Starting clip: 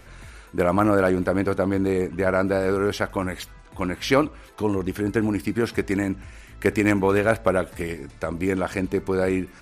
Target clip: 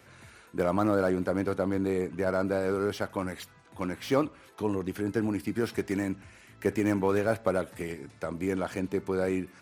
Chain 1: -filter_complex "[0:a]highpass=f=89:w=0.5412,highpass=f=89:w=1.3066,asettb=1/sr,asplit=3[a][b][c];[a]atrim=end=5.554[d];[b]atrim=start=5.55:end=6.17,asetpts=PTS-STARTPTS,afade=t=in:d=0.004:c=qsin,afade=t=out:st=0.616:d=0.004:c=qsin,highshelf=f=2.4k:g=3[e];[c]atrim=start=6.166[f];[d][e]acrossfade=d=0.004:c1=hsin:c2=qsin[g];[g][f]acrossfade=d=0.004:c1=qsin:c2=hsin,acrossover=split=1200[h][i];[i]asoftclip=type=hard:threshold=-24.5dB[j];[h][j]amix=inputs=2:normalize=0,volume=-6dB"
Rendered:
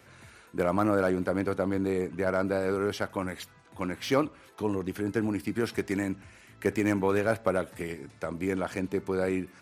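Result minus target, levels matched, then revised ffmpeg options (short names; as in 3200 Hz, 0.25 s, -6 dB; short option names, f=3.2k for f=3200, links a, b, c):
hard clip: distortion -6 dB
-filter_complex "[0:a]highpass=f=89:w=0.5412,highpass=f=89:w=1.3066,asettb=1/sr,asplit=3[a][b][c];[a]atrim=end=5.554[d];[b]atrim=start=5.55:end=6.17,asetpts=PTS-STARTPTS,afade=t=in:d=0.004:c=qsin,afade=t=out:st=0.616:d=0.004:c=qsin,highshelf=f=2.4k:g=3[e];[c]atrim=start=6.166[f];[d][e]acrossfade=d=0.004:c1=hsin:c2=qsin[g];[g][f]acrossfade=d=0.004:c1=qsin:c2=hsin,acrossover=split=1200[h][i];[i]asoftclip=type=hard:threshold=-31.5dB[j];[h][j]amix=inputs=2:normalize=0,volume=-6dB"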